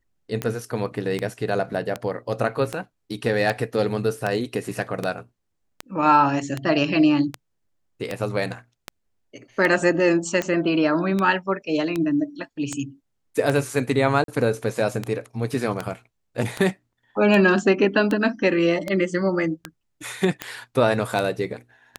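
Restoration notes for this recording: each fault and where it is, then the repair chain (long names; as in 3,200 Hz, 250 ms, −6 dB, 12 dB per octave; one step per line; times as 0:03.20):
scratch tick 78 rpm −11 dBFS
0:14.24–0:14.28: drop-out 42 ms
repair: click removal
repair the gap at 0:14.24, 42 ms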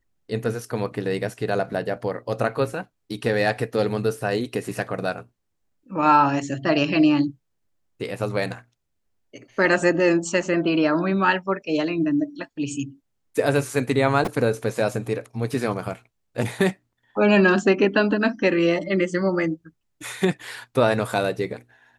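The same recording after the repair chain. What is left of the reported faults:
none of them is left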